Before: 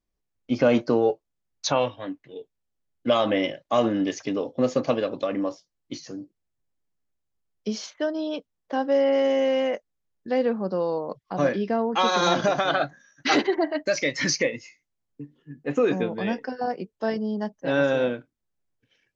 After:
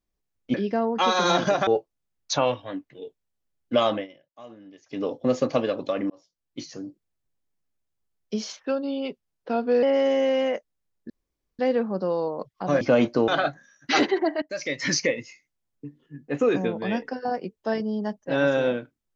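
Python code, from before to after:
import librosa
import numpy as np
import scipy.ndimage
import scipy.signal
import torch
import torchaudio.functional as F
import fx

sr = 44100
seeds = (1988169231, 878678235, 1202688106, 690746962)

y = fx.edit(x, sr, fx.swap(start_s=0.54, length_s=0.47, other_s=11.51, other_length_s=1.13),
    fx.fade_down_up(start_s=3.22, length_s=1.17, db=-23.0, fade_s=0.19),
    fx.fade_in_span(start_s=5.44, length_s=0.54),
    fx.speed_span(start_s=7.93, length_s=1.09, speed=0.88),
    fx.insert_room_tone(at_s=10.29, length_s=0.49),
    fx.fade_in_from(start_s=13.78, length_s=0.5, floor_db=-15.0), tone=tone)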